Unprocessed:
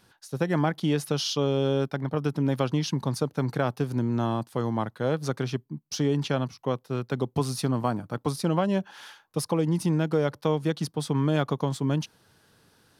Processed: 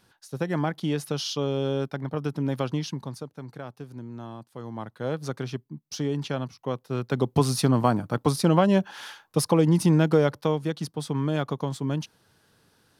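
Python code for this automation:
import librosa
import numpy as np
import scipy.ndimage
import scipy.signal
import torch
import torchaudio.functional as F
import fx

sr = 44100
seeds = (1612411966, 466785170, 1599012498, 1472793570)

y = fx.gain(x, sr, db=fx.line((2.76, -2.0), (3.36, -12.5), (4.48, -12.5), (5.08, -3.0), (6.61, -3.0), (7.35, 5.0), (10.13, 5.0), (10.68, -2.0)))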